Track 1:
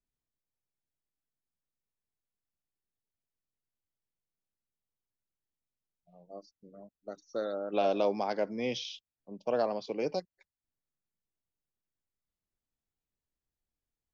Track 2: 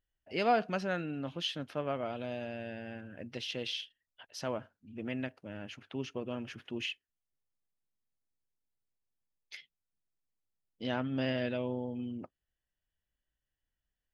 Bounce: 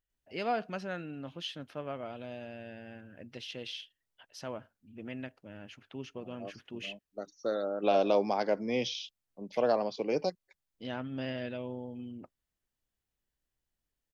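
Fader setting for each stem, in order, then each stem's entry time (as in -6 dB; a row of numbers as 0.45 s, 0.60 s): +2.0 dB, -4.0 dB; 0.10 s, 0.00 s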